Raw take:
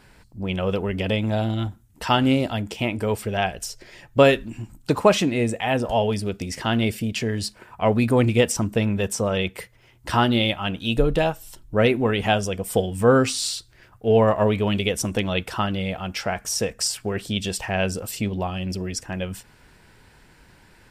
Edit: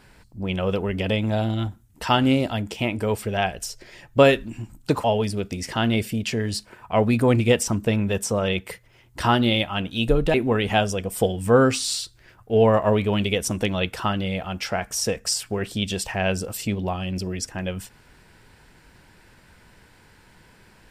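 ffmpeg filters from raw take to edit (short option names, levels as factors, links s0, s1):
-filter_complex "[0:a]asplit=3[s0][s1][s2];[s0]atrim=end=5.042[s3];[s1]atrim=start=5.928:end=11.232[s4];[s2]atrim=start=11.878[s5];[s3][s4]acrossfade=d=0.004:c1=hsin:c2=hsin[s6];[s6][s5]acrossfade=d=0.004:c1=hsin:c2=hsin"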